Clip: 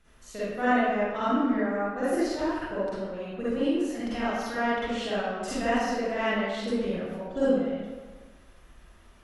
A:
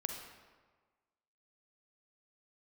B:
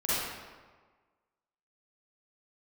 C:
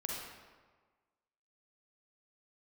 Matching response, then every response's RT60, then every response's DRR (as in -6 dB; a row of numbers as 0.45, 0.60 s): B; 1.4, 1.5, 1.5 s; 3.0, -11.5, -3.0 dB